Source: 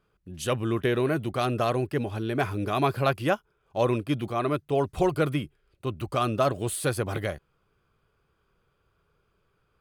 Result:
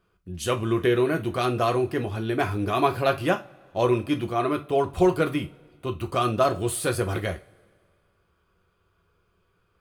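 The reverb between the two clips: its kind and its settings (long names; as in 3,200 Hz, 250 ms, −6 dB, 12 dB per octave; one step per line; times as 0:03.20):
coupled-rooms reverb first 0.24 s, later 1.9 s, from −27 dB, DRR 4.5 dB
level +1 dB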